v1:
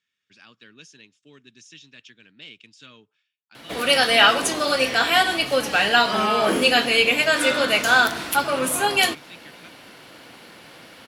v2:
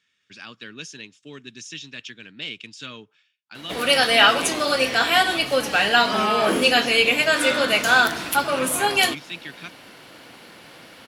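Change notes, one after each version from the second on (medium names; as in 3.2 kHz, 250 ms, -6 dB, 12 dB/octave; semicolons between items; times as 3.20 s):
speech +10.0 dB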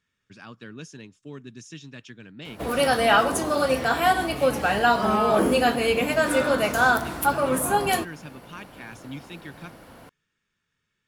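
background: entry -1.10 s; master: remove frequency weighting D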